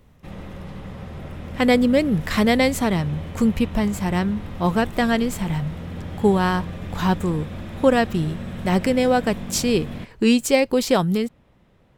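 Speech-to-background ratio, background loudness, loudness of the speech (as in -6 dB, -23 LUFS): 13.5 dB, -34.5 LUFS, -21.0 LUFS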